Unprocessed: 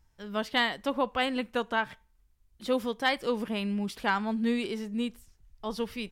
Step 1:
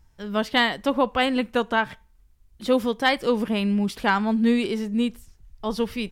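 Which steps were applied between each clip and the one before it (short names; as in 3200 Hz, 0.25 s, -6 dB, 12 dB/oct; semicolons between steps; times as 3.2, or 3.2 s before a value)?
low shelf 450 Hz +3.5 dB; gain +5.5 dB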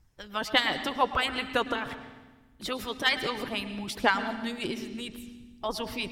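harmonic-percussive split harmonic -18 dB; reverb RT60 1.3 s, pre-delay 0.104 s, DRR 10 dB; gain +1.5 dB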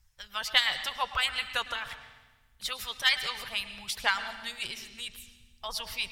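passive tone stack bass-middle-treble 10-0-10; gain +4.5 dB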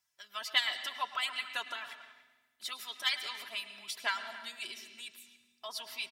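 HPF 180 Hz 24 dB/oct; comb 3 ms, depth 68%; speakerphone echo 0.28 s, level -16 dB; gain -7.5 dB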